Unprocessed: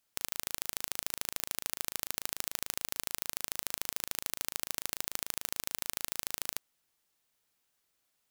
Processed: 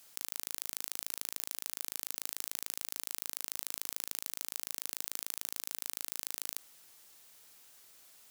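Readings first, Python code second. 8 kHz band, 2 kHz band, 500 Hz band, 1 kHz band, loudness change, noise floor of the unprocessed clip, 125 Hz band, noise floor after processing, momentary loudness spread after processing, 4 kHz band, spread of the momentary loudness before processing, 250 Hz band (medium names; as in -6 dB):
-2.0 dB, -6.0 dB, -7.0 dB, -6.5 dB, -2.0 dB, -79 dBFS, under -10 dB, -65 dBFS, 19 LU, -3.5 dB, 1 LU, -8.5 dB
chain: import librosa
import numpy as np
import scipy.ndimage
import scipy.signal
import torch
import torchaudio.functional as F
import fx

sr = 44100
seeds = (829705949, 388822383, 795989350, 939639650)

p1 = fx.bass_treble(x, sr, bass_db=-4, treble_db=4)
p2 = (np.mod(10.0 ** (5.5 / 20.0) * p1 + 1.0, 2.0) - 1.0) / 10.0 ** (5.5 / 20.0)
p3 = p1 + (p2 * 10.0 ** (-10.5 / 20.0))
p4 = fx.env_flatten(p3, sr, amount_pct=50)
y = p4 * 10.0 ** (-6.5 / 20.0)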